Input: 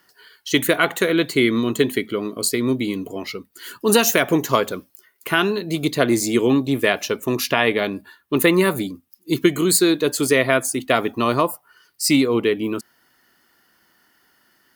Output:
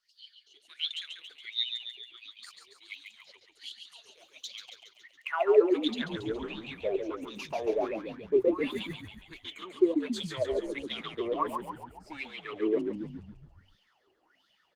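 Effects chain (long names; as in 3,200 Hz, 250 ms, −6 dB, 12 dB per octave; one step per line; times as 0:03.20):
graphic EQ with 15 bands 250 Hz −11 dB, 1,600 Hz −8 dB, 6,300 Hz +7 dB
leveller curve on the samples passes 1
reversed playback
downward compressor 12 to 1, threshold −25 dBFS, peak gain reduction 17.5 dB
reversed playback
high-pass filter sweep 4,000 Hz → 250 Hz, 0:04.81–0:05.77
in parallel at −6 dB: wave folding −22 dBFS
on the sum: LFO wah 1.4 Hz 380–3,600 Hz, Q 11
echo with shifted repeats 139 ms, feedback 57%, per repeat −60 Hz, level −6 dB
level +6.5 dB
Opus 20 kbit/s 48,000 Hz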